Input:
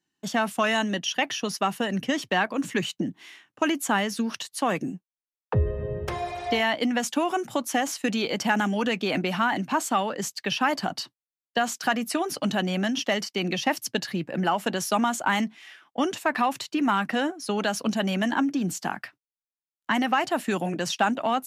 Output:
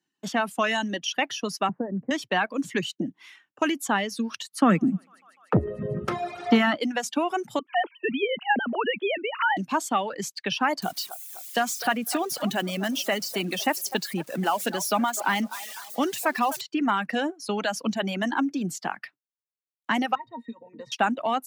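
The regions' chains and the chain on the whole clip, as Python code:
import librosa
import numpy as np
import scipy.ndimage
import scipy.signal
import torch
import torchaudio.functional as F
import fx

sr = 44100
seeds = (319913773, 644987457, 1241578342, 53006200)

y = fx.chain(x, sr, fx.gaussian_blur(sigma=8.0),
    fx.band_squash(depth_pct=70), at=(1.69, 2.11))
y = fx.chain(y, sr, fx.small_body(hz=(200.0, 1300.0), ring_ms=25, db=15),
    fx.echo_thinned(ms=149, feedback_pct=80, hz=420.0, wet_db=-22.0),
    fx.transformer_sat(knee_hz=270.0), at=(4.5, 6.77))
y = fx.chain(y, sr, fx.sine_speech(),
    fx.peak_eq(hz=310.0, db=-5.5, octaves=0.38), at=(7.59, 9.57))
y = fx.chain(y, sr, fx.crossing_spikes(level_db=-25.5),
    fx.echo_wet_bandpass(ms=252, feedback_pct=46, hz=850.0, wet_db=-10), at=(10.82, 16.61))
y = fx.chain(y, sr, fx.peak_eq(hz=61.0, db=-10.0, octaves=1.6),
    fx.octave_resonator(note='A#', decay_s=0.11),
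    fx.band_squash(depth_pct=100), at=(20.15, 20.92))
y = fx.dereverb_blind(y, sr, rt60_s=0.99)
y = scipy.signal.sosfilt(scipy.signal.butter(2, 140.0, 'highpass', fs=sr, output='sos'), y)
y = fx.high_shelf(y, sr, hz=8100.0, db=-4.5)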